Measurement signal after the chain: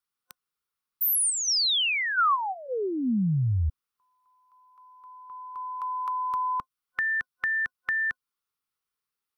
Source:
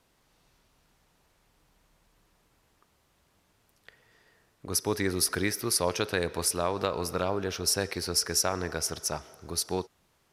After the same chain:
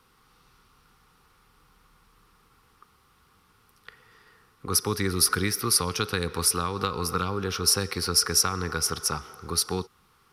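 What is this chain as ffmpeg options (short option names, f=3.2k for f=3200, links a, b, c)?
-filter_complex "[0:a]acrossover=split=270|3000[a][b][c];[b]acompressor=threshold=-35dB:ratio=4[d];[a][d][c]amix=inputs=3:normalize=0,superequalizer=6b=0.708:8b=0.251:10b=2.51:15b=0.562,volume=5.5dB"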